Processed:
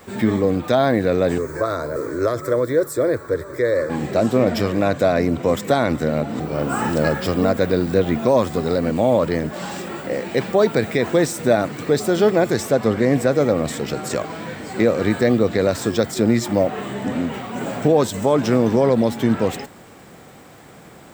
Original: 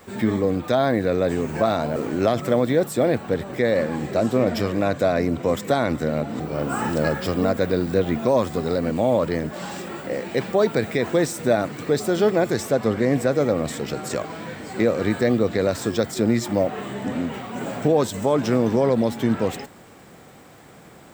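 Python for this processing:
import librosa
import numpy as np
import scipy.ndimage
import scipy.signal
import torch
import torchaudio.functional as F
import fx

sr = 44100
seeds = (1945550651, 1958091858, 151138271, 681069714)

y = fx.fixed_phaser(x, sr, hz=770.0, stages=6, at=(1.38, 3.9))
y = y * 10.0 ** (3.0 / 20.0)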